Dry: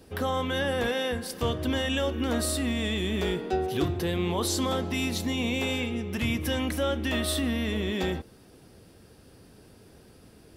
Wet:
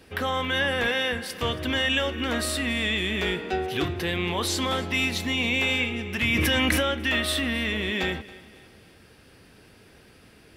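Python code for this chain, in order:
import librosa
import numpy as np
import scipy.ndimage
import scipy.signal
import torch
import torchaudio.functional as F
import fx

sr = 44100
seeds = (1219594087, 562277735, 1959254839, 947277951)

y = fx.peak_eq(x, sr, hz=2200.0, db=11.0, octaves=1.7)
y = fx.echo_feedback(y, sr, ms=276, feedback_pct=43, wet_db=-19.5)
y = fx.env_flatten(y, sr, amount_pct=100, at=(6.32, 6.81), fade=0.02)
y = y * 10.0 ** (-1.5 / 20.0)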